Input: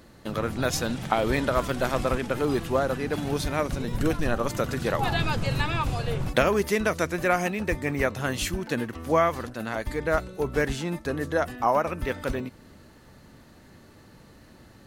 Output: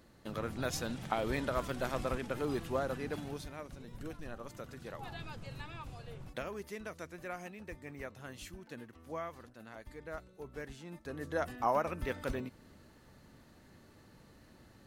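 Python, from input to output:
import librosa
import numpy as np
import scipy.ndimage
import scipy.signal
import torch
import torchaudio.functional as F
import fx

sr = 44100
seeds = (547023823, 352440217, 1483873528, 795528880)

y = fx.gain(x, sr, db=fx.line((3.1, -10.0), (3.57, -19.5), (10.79, -19.5), (11.47, -8.0)))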